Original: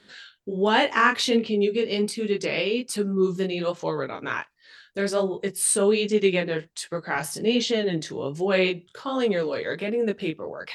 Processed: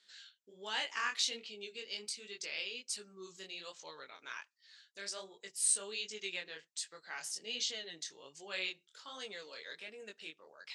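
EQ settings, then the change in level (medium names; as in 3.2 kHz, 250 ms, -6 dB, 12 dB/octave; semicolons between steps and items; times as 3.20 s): band-pass filter 7.2 kHz, Q 1.4; distance through air 59 m; +1.0 dB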